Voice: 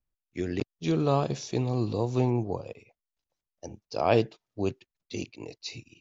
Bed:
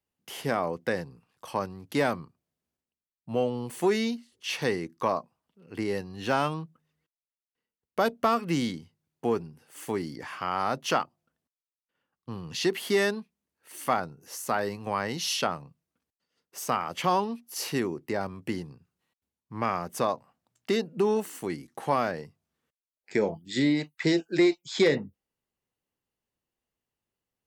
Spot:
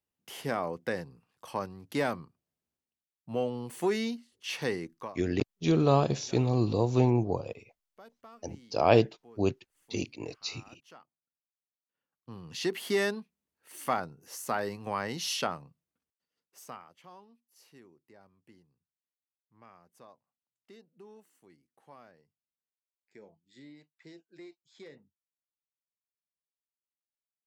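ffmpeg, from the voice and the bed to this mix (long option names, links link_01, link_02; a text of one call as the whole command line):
ffmpeg -i stem1.wav -i stem2.wav -filter_complex "[0:a]adelay=4800,volume=1.5dB[link_01];[1:a]volume=20.5dB,afade=type=out:start_time=4.84:duration=0.32:silence=0.0630957,afade=type=in:start_time=11.51:duration=1.37:silence=0.0595662,afade=type=out:start_time=15.42:duration=1.55:silence=0.0630957[link_02];[link_01][link_02]amix=inputs=2:normalize=0" out.wav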